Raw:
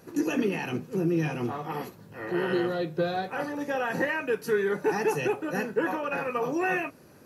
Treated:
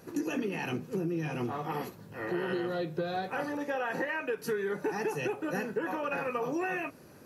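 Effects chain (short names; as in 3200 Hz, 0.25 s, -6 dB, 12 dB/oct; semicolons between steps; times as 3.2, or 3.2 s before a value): 3.57–4.38 tone controls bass -8 dB, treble -5 dB; compressor, threshold -29 dBFS, peak gain reduction 8.5 dB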